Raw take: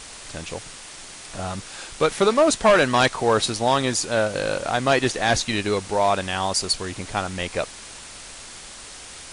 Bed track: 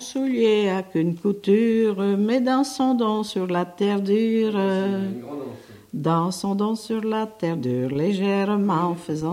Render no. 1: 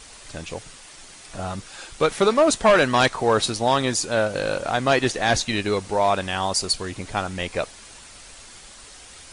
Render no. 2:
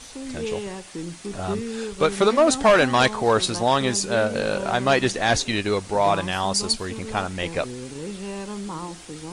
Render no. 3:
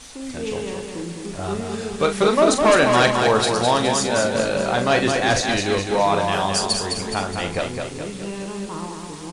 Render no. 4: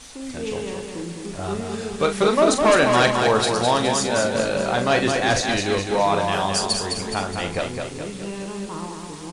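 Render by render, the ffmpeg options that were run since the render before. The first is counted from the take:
-af "afftdn=nr=6:nf=-40"
-filter_complex "[1:a]volume=0.266[s0];[0:a][s0]amix=inputs=2:normalize=0"
-filter_complex "[0:a]asplit=2[s0][s1];[s1]adelay=41,volume=0.398[s2];[s0][s2]amix=inputs=2:normalize=0,aecho=1:1:209|418|627|836|1045|1254|1463:0.562|0.292|0.152|0.0791|0.0411|0.0214|0.0111"
-af "volume=0.891"

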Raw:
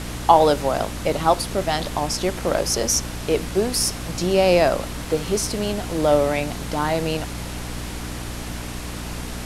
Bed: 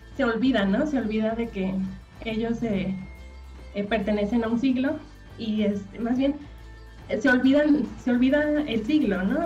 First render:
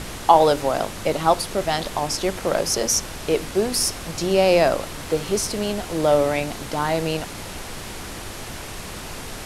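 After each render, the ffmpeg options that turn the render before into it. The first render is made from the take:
-af "bandreject=f=60:t=h:w=4,bandreject=f=120:t=h:w=4,bandreject=f=180:t=h:w=4,bandreject=f=240:t=h:w=4,bandreject=f=300:t=h:w=4"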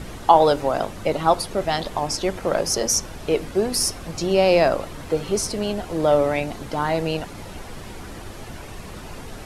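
-af "afftdn=nr=9:nf=-35"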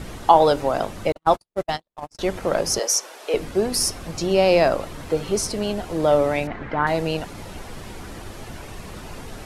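-filter_complex "[0:a]asettb=1/sr,asplit=3[s0][s1][s2];[s0]atrim=end=1.124[s3];[s1]atrim=start=1.12:end=2.19,asetpts=PTS-STARTPTS,afade=t=in:d=0.004:c=qsin,afade=t=out:st=1.066:d=0.004:c=qsin,agate=range=0.00126:threshold=0.0794:ratio=16:release=100:detection=peak[s4];[s2]atrim=start=2.186[s5];[s3][s4]acrossfade=d=0.004:c1=hsin:c2=qsin[s6];[s6][s5]acrossfade=d=0.004:c1=qsin:c2=hsin,asettb=1/sr,asplit=3[s7][s8][s9];[s7]atrim=end=2.794[s10];[s8]atrim=start=2.79:end=3.34,asetpts=PTS-STARTPTS,afade=t=in:d=0.004:c=qsin,afade=t=out:st=0.546:d=0.004:c=qsin,highpass=f=430:w=0.5412,highpass=f=430:w=1.3066[s11];[s9]atrim=start=3.336[s12];[s10][s11]acrossfade=d=0.004:c1=hsin:c2=qsin[s13];[s13][s12]acrossfade=d=0.004:c1=qsin:c2=hsin,asettb=1/sr,asplit=3[s14][s15][s16];[s14]atrim=end=6.474[s17];[s15]atrim=start=6.47:end=6.87,asetpts=PTS-STARTPTS,afade=t=in:d=0.004:c=qsin,afade=t=out:st=0.396:d=0.004:c=qsin,lowpass=f=1900:t=q:w=2.7[s18];[s16]atrim=start=6.866[s19];[s17][s18]acrossfade=d=0.004:c1=hsin:c2=qsin[s20];[s20][s19]acrossfade=d=0.004:c1=qsin:c2=hsin"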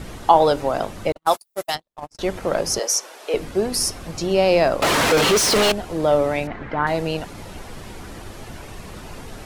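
-filter_complex "[0:a]asplit=3[s0][s1][s2];[s0]afade=t=out:st=1.25:d=0.02[s3];[s1]aemphasis=mode=production:type=riaa,afade=t=in:st=1.25:d=0.02,afade=t=out:st=1.74:d=0.02[s4];[s2]afade=t=in:st=1.74:d=0.02[s5];[s3][s4][s5]amix=inputs=3:normalize=0,asettb=1/sr,asplit=3[s6][s7][s8];[s6]atrim=end=4.824[s9];[s7]atrim=start=4.82:end=5.72,asetpts=PTS-STARTPTS,afade=t=in:d=0.004:c=qsin,afade=t=out:st=0.896:d=0.004:c=qsin,asplit=2[s10][s11];[s11]highpass=f=720:p=1,volume=89.1,asoftclip=type=tanh:threshold=0.335[s12];[s10][s12]amix=inputs=2:normalize=0,lowpass=f=5400:p=1,volume=0.501[s13];[s8]atrim=start=5.716[s14];[s9][s13]acrossfade=d=0.004:c1=hsin:c2=qsin[s15];[s15][s14]acrossfade=d=0.004:c1=qsin:c2=hsin"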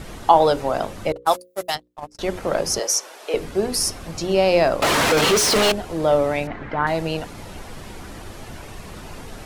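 -af "bandreject=f=60:t=h:w=6,bandreject=f=120:t=h:w=6,bandreject=f=180:t=h:w=6,bandreject=f=240:t=h:w=6,bandreject=f=300:t=h:w=6,bandreject=f=360:t=h:w=6,bandreject=f=420:t=h:w=6,bandreject=f=480:t=h:w=6,bandreject=f=540:t=h:w=6"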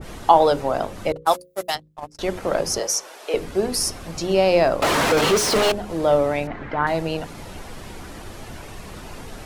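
-af "bandreject=f=51.54:t=h:w=4,bandreject=f=103.08:t=h:w=4,bandreject=f=154.62:t=h:w=4,bandreject=f=206.16:t=h:w=4,adynamicequalizer=threshold=0.0282:dfrequency=1600:dqfactor=0.7:tfrequency=1600:tqfactor=0.7:attack=5:release=100:ratio=0.375:range=2:mode=cutabove:tftype=highshelf"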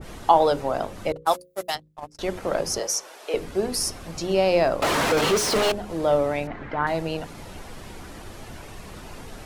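-af "volume=0.708"

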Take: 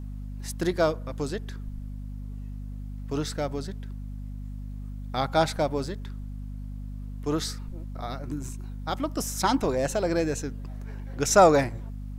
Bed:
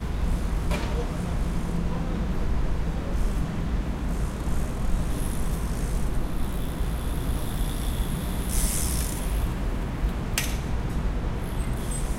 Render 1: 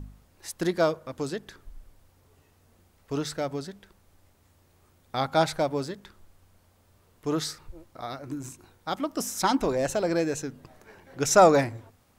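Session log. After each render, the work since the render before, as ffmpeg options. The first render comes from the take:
-af "bandreject=f=50:t=h:w=4,bandreject=f=100:t=h:w=4,bandreject=f=150:t=h:w=4,bandreject=f=200:t=h:w=4,bandreject=f=250:t=h:w=4"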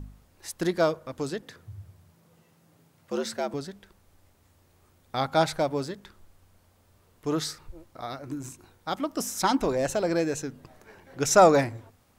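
-filter_complex "[0:a]asettb=1/sr,asplit=3[s0][s1][s2];[s0]atrim=end=1.424[s3];[s1]atrim=start=1.42:end=3.54,asetpts=PTS-STARTPTS,afade=t=in:d=0.004:c=qsin,afade=t=out:st=2.116:d=0.004:c=qsin,afreqshift=75[s4];[s2]atrim=start=3.536[s5];[s3][s4]acrossfade=d=0.004:c1=hsin:c2=qsin[s6];[s6][s5]acrossfade=d=0.004:c1=qsin:c2=hsin"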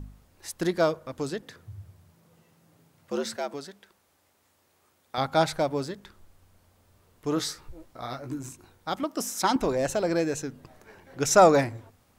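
-filter_complex "[0:a]asettb=1/sr,asplit=3[s0][s1][s2];[s0]atrim=end=3.364[s3];[s1]atrim=start=3.36:end=5.18,asetpts=PTS-STARTPTS,afade=t=in:d=0.004:c=qsin,afade=t=out:st=1.816:d=0.004:c=qsin,highpass=f=460:p=1[s4];[s2]atrim=start=5.176[s5];[s3][s4]acrossfade=d=0.004:c1=hsin:c2=qsin[s6];[s6][s5]acrossfade=d=0.004:c1=qsin:c2=hsin,asettb=1/sr,asplit=3[s7][s8][s9];[s7]atrim=end=7.354[s10];[s8]atrim=start=7.35:end=8.39,asetpts=PTS-STARTPTS,afade=t=in:d=0.004:c=qsin,afade=t=out:st=1.036:d=0.004:c=qsin,asplit=2[s11][s12];[s12]adelay=16,volume=0.531[s13];[s11][s13]amix=inputs=2:normalize=0,atrim=end_sample=45864[s14];[s9]atrim=start=8.386[s15];[s10][s14]acrossfade=d=0.004:c1=hsin:c2=qsin[s16];[s16][s15]acrossfade=d=0.004:c1=qsin:c2=hsin,asettb=1/sr,asplit=3[s17][s18][s19];[s17]atrim=end=9.034[s20];[s18]atrim=start=9.03:end=9.56,asetpts=PTS-STARTPTS,afade=t=in:d=0.004:c=qsin,afade=t=out:st=0.526:d=0.004:c=qsin,highpass=180[s21];[s19]atrim=start=9.556[s22];[s20][s21]acrossfade=d=0.004:c1=hsin:c2=qsin[s23];[s23][s22]acrossfade=d=0.004:c1=qsin:c2=hsin"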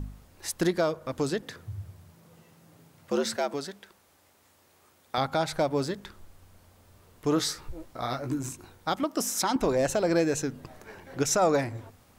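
-filter_complex "[0:a]asplit=2[s0][s1];[s1]acompressor=threshold=0.0251:ratio=6,volume=0.75[s2];[s0][s2]amix=inputs=2:normalize=0,alimiter=limit=0.178:level=0:latency=1:release=195"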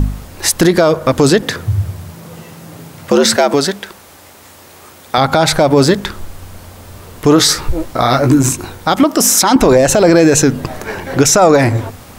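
-af "acontrast=48,alimiter=level_in=7.08:limit=0.891:release=50:level=0:latency=1"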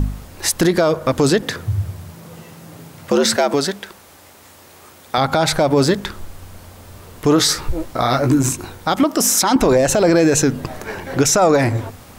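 -af "volume=0.562"

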